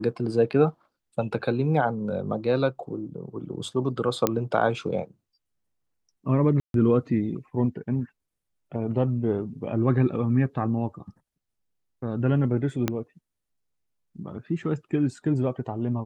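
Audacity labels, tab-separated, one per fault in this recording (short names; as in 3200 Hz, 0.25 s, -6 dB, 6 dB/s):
4.270000	4.270000	pop -7 dBFS
6.600000	6.740000	gap 0.142 s
12.880000	12.880000	pop -10 dBFS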